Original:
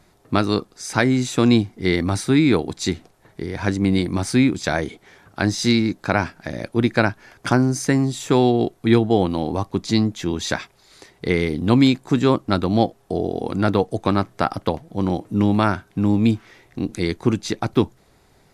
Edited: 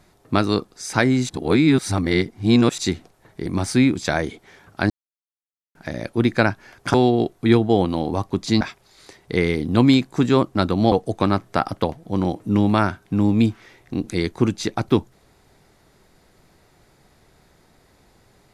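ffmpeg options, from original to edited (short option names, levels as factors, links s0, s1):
-filter_complex "[0:a]asplit=9[s0][s1][s2][s3][s4][s5][s6][s7][s8];[s0]atrim=end=1.292[s9];[s1]atrim=start=1.288:end=2.782,asetpts=PTS-STARTPTS,areverse[s10];[s2]atrim=start=2.778:end=3.462[s11];[s3]atrim=start=4.048:end=5.49,asetpts=PTS-STARTPTS,afade=t=out:st=1.438:d=0.004:c=hsin[s12];[s4]atrim=start=5.49:end=6.34,asetpts=PTS-STARTPTS,volume=0[s13];[s5]atrim=start=6.34:end=7.532,asetpts=PTS-STARTPTS,afade=t=in:d=0.004:c=hsin[s14];[s6]atrim=start=8.348:end=10.022[s15];[s7]atrim=start=10.538:end=12.852[s16];[s8]atrim=start=13.768[s17];[s9][s10]acrossfade=d=0.004:c1=hsin:c2=hsin[s18];[s18][s11]acrossfade=d=0.004:c1=hsin:c2=hsin[s19];[s12][s13][s14]concat=n=3:v=0:a=1[s20];[s19][s20]acrossfade=d=0.004:c1=hsin:c2=hsin[s21];[s21][s15]acrossfade=d=0.004:c1=hsin:c2=hsin[s22];[s22][s16]acrossfade=d=0.004:c1=hsin:c2=hsin[s23];[s23][s17]acrossfade=d=0.004:c1=hsin:c2=hsin"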